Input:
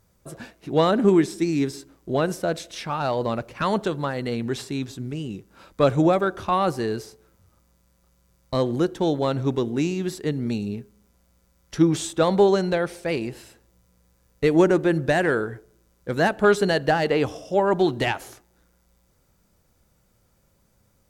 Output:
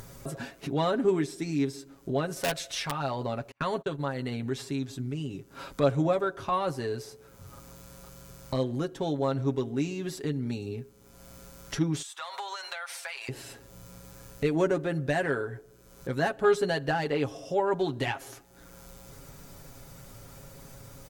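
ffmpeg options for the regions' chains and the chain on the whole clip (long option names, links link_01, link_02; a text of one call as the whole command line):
ffmpeg -i in.wav -filter_complex "[0:a]asettb=1/sr,asplit=3[link_01][link_02][link_03];[link_01]atrim=end=2.364[link_04];[link_02]atrim=start=2.36:end=2.91,asetpts=PTS-STARTPTS,afade=type=in:duration=0.004:curve=qsin,afade=type=out:start_time=0.546:duration=0.004:curve=qsin,equalizer=frequency=250:width=0.83:gain=-12,acontrast=56,aeval=exprs='(mod(4.73*val(0)+1,2)-1)/4.73':channel_layout=same[link_05];[link_03]atrim=start=2.906[link_06];[link_04][link_05]acrossfade=duration=0.004:curve1=hsin:curve2=qsin[link_07];[link_07][link_06]acrossfade=duration=0.004:curve1=qsin:curve2=hsin,asettb=1/sr,asplit=3[link_08][link_09][link_10];[link_08]atrim=end=3.514[link_11];[link_09]atrim=start=3.51:end=4.52,asetpts=PTS-STARTPTS,afade=type=in:duration=0.004:curve=qsin,afade=type=out:start_time=1.006:duration=0.004:curve=qsin,agate=range=-37dB:threshold=-32dB:ratio=16:release=100:detection=peak,bandreject=frequency=5200:width=9.2[link_12];[link_10]atrim=start=4.516[link_13];[link_11][link_12]acrossfade=duration=0.004:curve1=hsin:curve2=qsin[link_14];[link_14][link_13]acrossfade=duration=0.004:curve1=qsin:curve2=hsin,asettb=1/sr,asplit=3[link_15][link_16][link_17];[link_15]atrim=end=12.024[link_18];[link_16]atrim=start=12.02:end=13.29,asetpts=PTS-STARTPTS,afade=type=in:duration=0.004:curve=qsin,afade=type=out:start_time=1.266:duration=0.004:curve=qsin,highpass=frequency=960:width=0.5412,highpass=frequency=960:width=1.3066,acompressor=threshold=-34dB:ratio=10:attack=3.2:release=140:knee=1:detection=peak[link_19];[link_17]atrim=start=13.286[link_20];[link_18][link_19]acrossfade=duration=0.004:curve1=hsin:curve2=qsin[link_21];[link_21][link_20]acrossfade=duration=0.004:curve1=qsin:curve2=hsin,aecho=1:1:7.3:0.68,acompressor=mode=upward:threshold=-19dB:ratio=2.5,volume=-8.5dB" out.wav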